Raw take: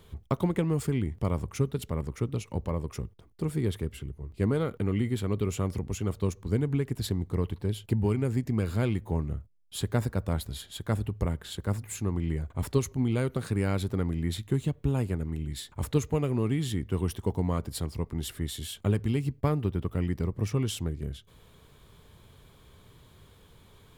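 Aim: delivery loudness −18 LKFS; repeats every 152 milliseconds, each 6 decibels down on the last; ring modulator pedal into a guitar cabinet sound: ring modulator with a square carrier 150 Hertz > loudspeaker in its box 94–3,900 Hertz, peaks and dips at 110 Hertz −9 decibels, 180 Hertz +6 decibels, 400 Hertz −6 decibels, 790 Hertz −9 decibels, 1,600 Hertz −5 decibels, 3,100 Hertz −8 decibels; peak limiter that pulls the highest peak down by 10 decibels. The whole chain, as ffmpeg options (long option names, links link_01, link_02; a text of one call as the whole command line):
ffmpeg -i in.wav -af "alimiter=limit=-22.5dB:level=0:latency=1,aecho=1:1:152|304|456|608|760|912:0.501|0.251|0.125|0.0626|0.0313|0.0157,aeval=exprs='val(0)*sgn(sin(2*PI*150*n/s))':channel_layout=same,highpass=94,equalizer=frequency=110:width_type=q:width=4:gain=-9,equalizer=frequency=180:width_type=q:width=4:gain=6,equalizer=frequency=400:width_type=q:width=4:gain=-6,equalizer=frequency=790:width_type=q:width=4:gain=-9,equalizer=frequency=1600:width_type=q:width=4:gain=-5,equalizer=frequency=3100:width_type=q:width=4:gain=-8,lowpass=frequency=3900:width=0.5412,lowpass=frequency=3900:width=1.3066,volume=17dB" out.wav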